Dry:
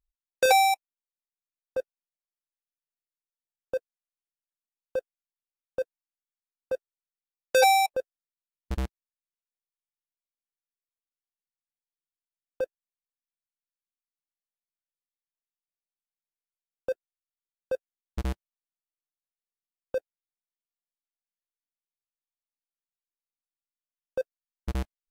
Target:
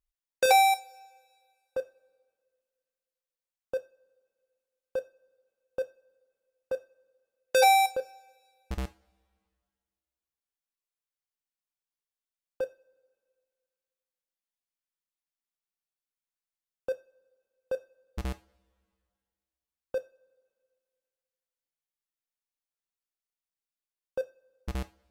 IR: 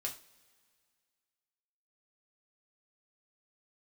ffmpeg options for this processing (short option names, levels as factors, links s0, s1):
-filter_complex "[0:a]asplit=2[s0][s1];[1:a]atrim=start_sample=2205,lowshelf=f=330:g=-10[s2];[s1][s2]afir=irnorm=-1:irlink=0,volume=0.668[s3];[s0][s3]amix=inputs=2:normalize=0,volume=0.596"